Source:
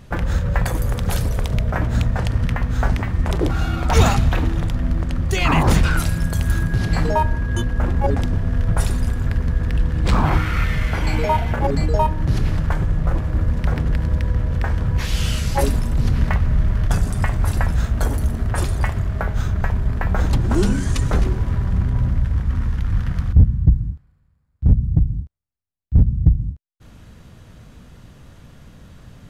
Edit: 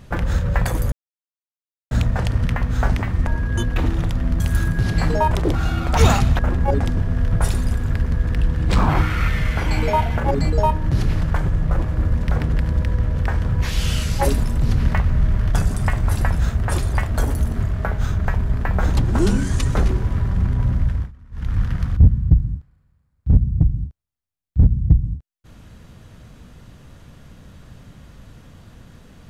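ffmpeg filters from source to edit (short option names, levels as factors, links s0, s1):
-filter_complex "[0:a]asplit=13[s0][s1][s2][s3][s4][s5][s6][s7][s8][s9][s10][s11][s12];[s0]atrim=end=0.92,asetpts=PTS-STARTPTS,afade=t=out:st=0.916:d=0.004:c=hsin[s13];[s1]atrim=start=0.92:end=1.91,asetpts=PTS-STARTPTS,volume=0[s14];[s2]atrim=start=1.91:end=3.272,asetpts=PTS-STARTPTS,afade=t=in:d=0.004:c=hsin[s15];[s3]atrim=start=7.258:end=7.752[s16];[s4]atrim=start=4.348:end=4.992[s17];[s5]atrim=start=6.348:end=7.262[s18];[s6]atrim=start=3.268:end=4.352[s19];[s7]atrim=start=7.748:end=17.932[s20];[s8]atrim=start=18.428:end=18.962[s21];[s9]atrim=start=17.928:end=18.432[s22];[s10]atrim=start=18.958:end=22.48,asetpts=PTS-STARTPTS,afade=t=out:st=3.252:d=0.27:c=qsin:silence=0.0668344[s23];[s11]atrim=start=22.48:end=22.67,asetpts=PTS-STARTPTS,volume=0.0668[s24];[s12]atrim=start=22.67,asetpts=PTS-STARTPTS,afade=t=in:d=0.27:c=qsin:silence=0.0668344[s25];[s13][s14][s15]concat=n=3:v=0:a=1[s26];[s26][s16]acrossfade=d=0.004:c1=hsin:c2=hsin[s27];[s27][s17]acrossfade=d=0.004:c1=hsin:c2=hsin[s28];[s28][s18]acrossfade=d=0.004:c1=hsin:c2=hsin[s29];[s29][s19]acrossfade=d=0.004:c1=hsin:c2=hsin[s30];[s30][s20]acrossfade=d=0.004:c1=hsin:c2=hsin[s31];[s31][s21]acrossfade=d=0.004:c1=hsin:c2=hsin[s32];[s32][s22]acrossfade=d=0.004:c1=hsin:c2=hsin[s33];[s23][s24][s25]concat=n=3:v=0:a=1[s34];[s33][s34]acrossfade=d=0.004:c1=hsin:c2=hsin"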